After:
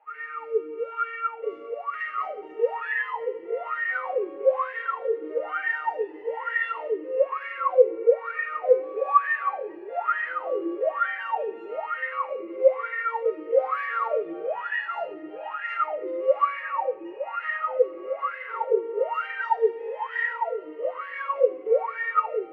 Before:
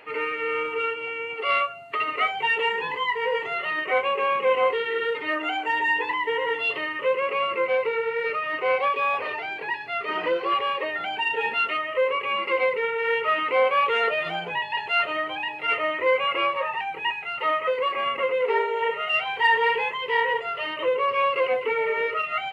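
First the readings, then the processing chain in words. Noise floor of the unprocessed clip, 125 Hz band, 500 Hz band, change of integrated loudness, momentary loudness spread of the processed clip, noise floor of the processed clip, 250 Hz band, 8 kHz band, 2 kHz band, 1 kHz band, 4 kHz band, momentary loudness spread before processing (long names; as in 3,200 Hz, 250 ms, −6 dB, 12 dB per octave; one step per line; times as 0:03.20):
−34 dBFS, below −20 dB, +0.5 dB, −2.5 dB, 9 LU, −41 dBFS, +0.5 dB, can't be measured, −5.5 dB, −3.0 dB, below −15 dB, 6 LU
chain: in parallel at −2 dB: brickwall limiter −19.5 dBFS, peak gain reduction 10 dB
on the sum: sine wavefolder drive 3 dB, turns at −7.5 dBFS
high-pass filter 110 Hz
automatic gain control
on a send: flutter between parallel walls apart 8.6 metres, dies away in 0.31 s
on the sum: rectangular room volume 150 cubic metres, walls hard, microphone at 0.57 metres
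LFO wah 1.1 Hz 330–1,800 Hz, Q 20
notch filter 1,000 Hz, Q 5.8
level −7 dB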